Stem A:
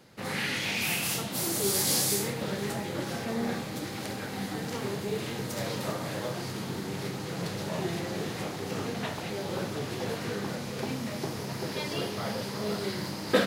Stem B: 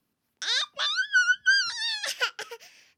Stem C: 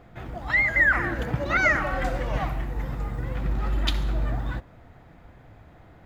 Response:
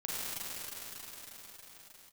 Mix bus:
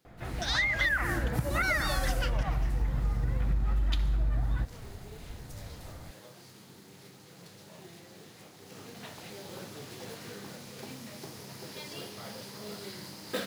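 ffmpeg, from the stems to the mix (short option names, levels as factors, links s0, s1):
-filter_complex "[0:a]highshelf=f=3100:g=7.5,acrusher=bits=3:mode=log:mix=0:aa=0.000001,volume=0.266,afade=t=in:st=8.52:d=0.72:silence=0.421697[s0];[1:a]volume=0.596,asplit=3[s1][s2][s3];[s1]atrim=end=0.89,asetpts=PTS-STARTPTS,afade=t=out:st=0.886:d=0.004:c=hsin[s4];[s2]atrim=start=0.89:end=1.63,asetpts=PTS-STARTPTS,volume=0[s5];[s3]atrim=start=1.63,asetpts=PTS-STARTPTS,afade=t=in:d=0.004:c=hsin[s6];[s4][s5][s6]concat=n=3:v=0:a=1[s7];[2:a]asubboost=boost=2:cutoff=210,adelay=50,volume=0.891[s8];[s0][s7][s8]amix=inputs=3:normalize=0,acompressor=threshold=0.0562:ratio=6"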